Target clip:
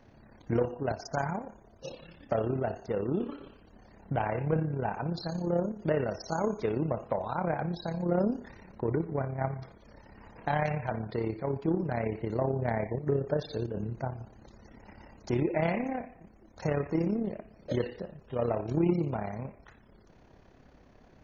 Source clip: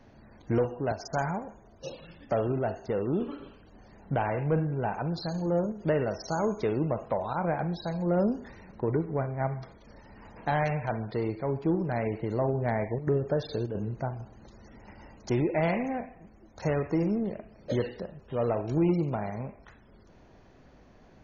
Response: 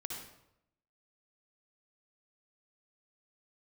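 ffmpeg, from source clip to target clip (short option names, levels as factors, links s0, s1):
-filter_complex "[0:a]tremolo=f=34:d=0.571,asplit=2[s0][s1];[1:a]atrim=start_sample=2205,afade=t=out:st=0.13:d=0.01,atrim=end_sample=6174,lowpass=5800[s2];[s1][s2]afir=irnorm=-1:irlink=0,volume=0.141[s3];[s0][s3]amix=inputs=2:normalize=0"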